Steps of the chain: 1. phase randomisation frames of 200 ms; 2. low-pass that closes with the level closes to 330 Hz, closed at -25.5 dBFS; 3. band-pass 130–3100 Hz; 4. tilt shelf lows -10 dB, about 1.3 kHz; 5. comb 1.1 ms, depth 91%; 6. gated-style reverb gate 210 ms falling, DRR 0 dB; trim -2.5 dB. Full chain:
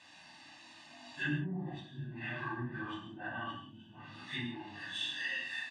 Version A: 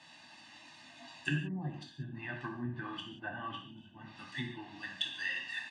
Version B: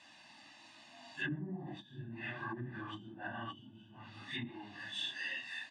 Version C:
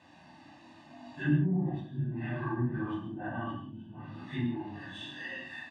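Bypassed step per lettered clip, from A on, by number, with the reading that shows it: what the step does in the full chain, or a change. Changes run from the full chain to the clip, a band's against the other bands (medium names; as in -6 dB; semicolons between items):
1, 125 Hz band +1.5 dB; 6, loudness change -3.0 LU; 4, 4 kHz band -15.0 dB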